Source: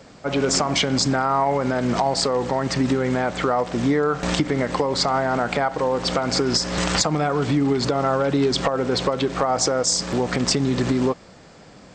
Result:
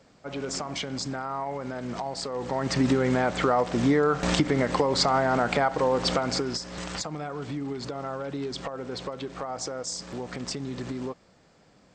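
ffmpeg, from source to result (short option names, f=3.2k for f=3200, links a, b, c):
-af "volume=-2dB,afade=t=in:st=2.3:d=0.54:silence=0.316228,afade=t=out:st=6.06:d=0.55:silence=0.281838"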